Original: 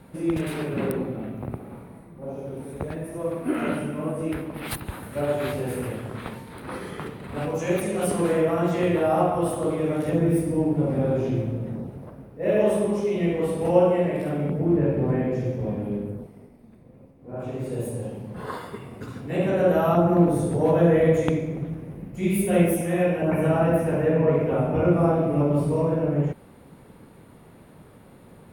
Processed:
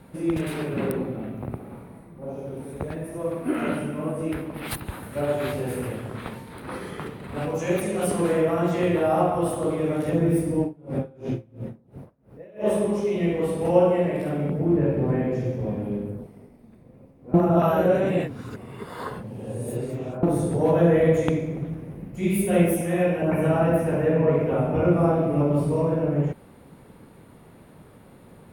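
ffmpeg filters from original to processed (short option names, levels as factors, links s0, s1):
-filter_complex "[0:a]asettb=1/sr,asplit=3[s0][s1][s2];[s0]atrim=end=10.624[s3];[s1]atrim=start=10.62:end=12.7,asetpts=PTS-STARTPTS,afade=t=in:d=0.004:c=qsin,afade=t=out:st=2.076:d=0.004:c=qsin,aeval=exprs='val(0)*pow(10,-28*(0.5-0.5*cos(2*PI*2.9*n/s))/20)':c=same[s4];[s2]atrim=start=12.696[s5];[s3][s4]acrossfade=d=0.004:c1=hsin:c2=qsin[s6];[s6][s5]acrossfade=d=0.004:c1=qsin:c2=hsin,asplit=3[s7][s8][s9];[s7]atrim=end=17.342[s10];[s8]atrim=start=17.338:end=20.232,asetpts=PTS-STARTPTS,areverse[s11];[s9]atrim=start=20.228[s12];[s10][s11]acrossfade=d=0.004:c1=hsin:c2=hsin[s13];[s13][s12]acrossfade=d=0.004:c1=hsin:c2=hsin"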